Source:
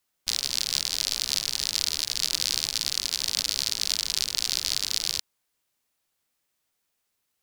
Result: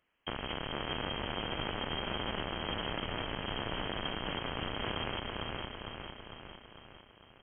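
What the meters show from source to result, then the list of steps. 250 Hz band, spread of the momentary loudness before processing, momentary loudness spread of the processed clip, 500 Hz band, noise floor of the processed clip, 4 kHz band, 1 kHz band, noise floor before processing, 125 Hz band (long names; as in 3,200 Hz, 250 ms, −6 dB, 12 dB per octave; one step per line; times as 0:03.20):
+11.0 dB, 1 LU, 13 LU, +12.0 dB, −60 dBFS, −13.0 dB, +9.0 dB, −78 dBFS, +9.0 dB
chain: repeating echo 453 ms, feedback 57%, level −7 dB
voice inversion scrambler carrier 3,200 Hz
brickwall limiter −29 dBFS, peak gain reduction 9.5 dB
level +6.5 dB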